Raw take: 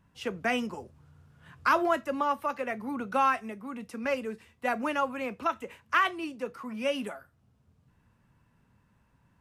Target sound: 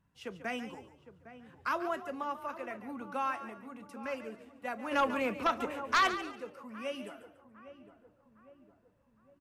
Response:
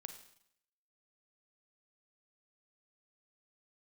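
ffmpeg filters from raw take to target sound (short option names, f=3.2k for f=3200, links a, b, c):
-filter_complex "[0:a]asplit=2[a][b];[b]adelay=808,lowpass=f=1.2k:p=1,volume=-13dB,asplit=2[c][d];[d]adelay=808,lowpass=f=1.2k:p=1,volume=0.54,asplit=2[e][f];[f]adelay=808,lowpass=f=1.2k:p=1,volume=0.54,asplit=2[g][h];[h]adelay=808,lowpass=f=1.2k:p=1,volume=0.54,asplit=2[i][j];[j]adelay=808,lowpass=f=1.2k:p=1,volume=0.54,asplit=2[k][l];[l]adelay=808,lowpass=f=1.2k:p=1,volume=0.54[m];[c][e][g][i][k][m]amix=inputs=6:normalize=0[n];[a][n]amix=inputs=2:normalize=0,asplit=3[o][p][q];[o]afade=t=out:st=4.91:d=0.02[r];[p]aeval=exprs='0.237*sin(PI/2*2.24*val(0)/0.237)':c=same,afade=t=in:st=4.91:d=0.02,afade=t=out:st=6.15:d=0.02[s];[q]afade=t=in:st=6.15:d=0.02[t];[r][s][t]amix=inputs=3:normalize=0,asplit=2[u][v];[v]asplit=3[w][x][y];[w]adelay=142,afreqshift=36,volume=-12.5dB[z];[x]adelay=284,afreqshift=72,volume=-23dB[aa];[y]adelay=426,afreqshift=108,volume=-33.4dB[ab];[z][aa][ab]amix=inputs=3:normalize=0[ac];[u][ac]amix=inputs=2:normalize=0,volume=-9dB"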